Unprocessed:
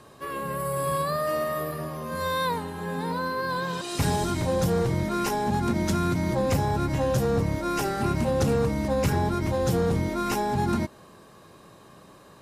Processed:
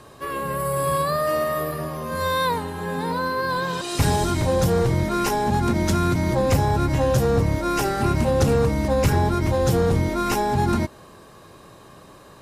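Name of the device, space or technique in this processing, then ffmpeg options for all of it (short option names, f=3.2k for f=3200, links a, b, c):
low shelf boost with a cut just above: -af "lowshelf=f=80:g=5.5,equalizer=f=190:t=o:w=0.72:g=-3.5,volume=4.5dB"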